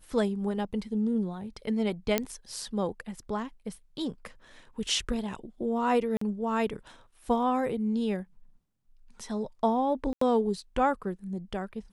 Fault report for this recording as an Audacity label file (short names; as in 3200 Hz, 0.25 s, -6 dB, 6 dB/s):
2.180000	2.180000	pop -9 dBFS
6.170000	6.210000	gap 44 ms
10.130000	10.210000	gap 84 ms